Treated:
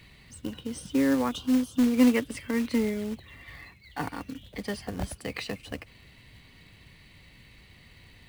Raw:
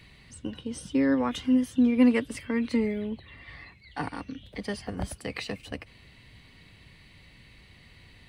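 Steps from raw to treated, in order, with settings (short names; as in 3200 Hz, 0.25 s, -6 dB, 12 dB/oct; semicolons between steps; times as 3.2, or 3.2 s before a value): 1.31–1.94 Chebyshev band-stop 1300–3000 Hz, order 2; short-mantissa float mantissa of 2-bit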